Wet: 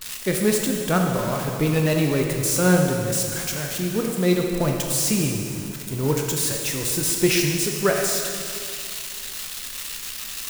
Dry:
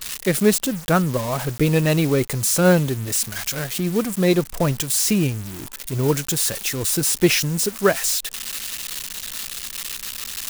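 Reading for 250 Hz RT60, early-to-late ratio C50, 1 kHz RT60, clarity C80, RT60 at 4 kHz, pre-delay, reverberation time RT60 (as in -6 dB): 2.4 s, 2.5 dB, 2.3 s, 3.5 dB, 2.3 s, 7 ms, 2.4 s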